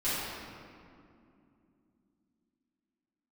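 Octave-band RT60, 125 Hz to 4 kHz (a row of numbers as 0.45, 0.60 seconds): 3.5, 4.4, 2.9, 2.3, 1.9, 1.4 seconds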